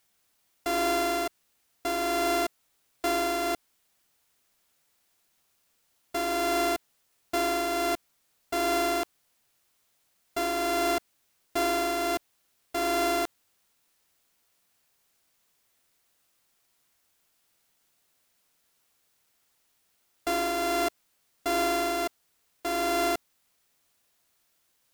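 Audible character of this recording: a buzz of ramps at a fixed pitch in blocks of 64 samples; tremolo triangle 1.4 Hz, depth 35%; a quantiser's noise floor 12-bit, dither triangular

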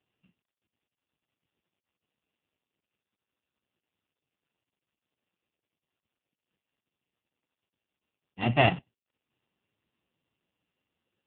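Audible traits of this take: a buzz of ramps at a fixed pitch in blocks of 16 samples; AMR-NB

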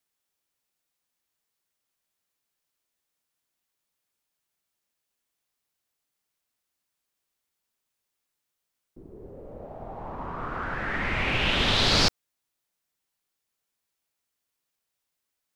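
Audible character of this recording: noise floor -83 dBFS; spectral tilt -3.5 dB/oct

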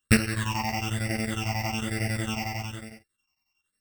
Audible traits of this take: a buzz of ramps at a fixed pitch in blocks of 16 samples; phasing stages 8, 1.1 Hz, lowest notch 440–1000 Hz; chopped level 11 Hz, depth 65%, duty 70%; a shimmering, thickened sound

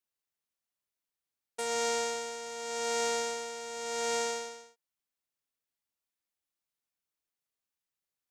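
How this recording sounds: noise floor -91 dBFS; spectral tilt +0.5 dB/oct

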